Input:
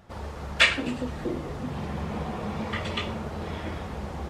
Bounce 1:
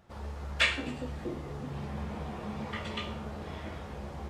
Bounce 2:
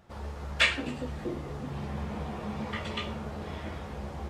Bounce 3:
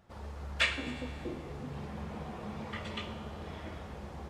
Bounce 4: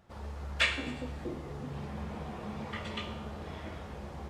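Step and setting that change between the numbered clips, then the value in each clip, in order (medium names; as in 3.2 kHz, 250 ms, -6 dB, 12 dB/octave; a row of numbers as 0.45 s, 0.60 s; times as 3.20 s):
feedback comb, decay: 0.47 s, 0.21 s, 2.2 s, 1 s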